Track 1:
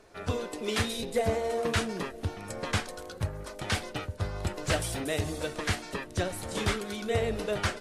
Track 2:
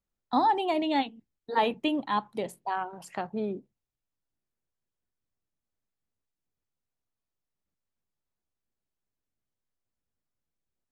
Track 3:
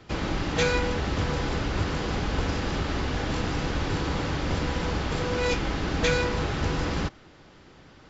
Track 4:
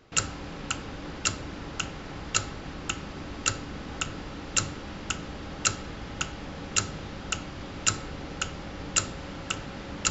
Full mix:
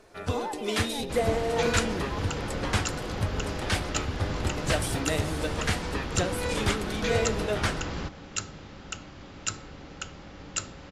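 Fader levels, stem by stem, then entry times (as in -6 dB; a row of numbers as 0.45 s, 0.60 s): +1.5 dB, -12.5 dB, -6.0 dB, -6.5 dB; 0.00 s, 0.00 s, 1.00 s, 1.60 s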